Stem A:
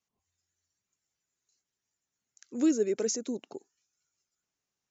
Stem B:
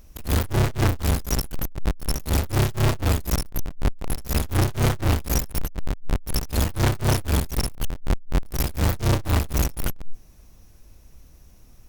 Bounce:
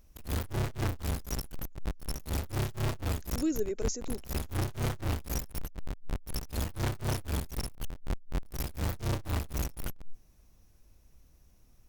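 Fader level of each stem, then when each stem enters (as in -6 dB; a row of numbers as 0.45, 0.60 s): -5.0, -11.0 dB; 0.80, 0.00 s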